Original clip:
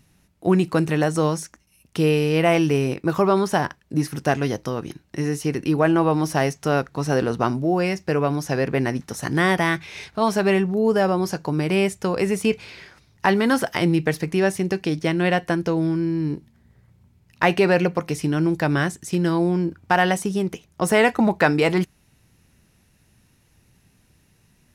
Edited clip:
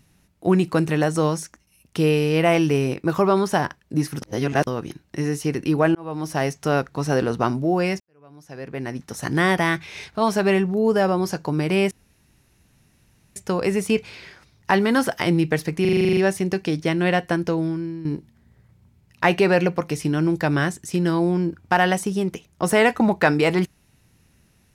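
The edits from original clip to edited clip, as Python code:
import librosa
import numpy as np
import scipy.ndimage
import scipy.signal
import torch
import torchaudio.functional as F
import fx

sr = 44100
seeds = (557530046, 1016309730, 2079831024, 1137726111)

y = fx.edit(x, sr, fx.reverse_span(start_s=4.22, length_s=0.45),
    fx.fade_in_span(start_s=5.95, length_s=0.81, curve='qsin'),
    fx.fade_in_span(start_s=8.0, length_s=1.27, curve='qua'),
    fx.insert_room_tone(at_s=11.91, length_s=1.45),
    fx.stutter(start_s=14.36, slice_s=0.04, count=10),
    fx.fade_out_to(start_s=15.67, length_s=0.57, floor_db=-12.0), tone=tone)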